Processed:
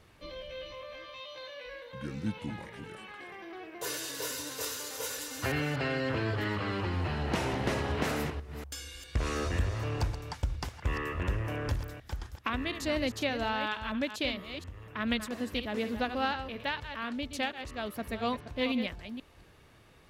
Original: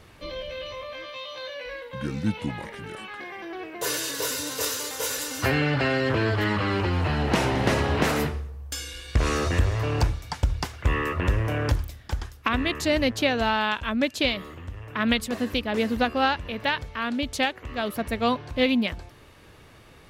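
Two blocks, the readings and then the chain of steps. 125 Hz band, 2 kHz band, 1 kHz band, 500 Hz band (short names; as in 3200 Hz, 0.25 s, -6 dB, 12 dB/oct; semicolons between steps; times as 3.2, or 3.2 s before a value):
-8.0 dB, -8.0 dB, -8.0 dB, -8.0 dB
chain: reverse delay 0.24 s, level -9.5 dB; gain -8.5 dB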